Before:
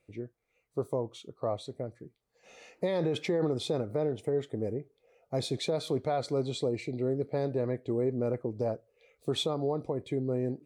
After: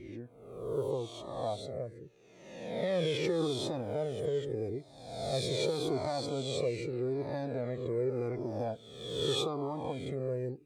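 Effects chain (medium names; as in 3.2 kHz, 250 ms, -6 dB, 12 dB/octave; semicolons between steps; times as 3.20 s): reverse spectral sustain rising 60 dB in 1.18 s; Shepard-style flanger falling 0.83 Hz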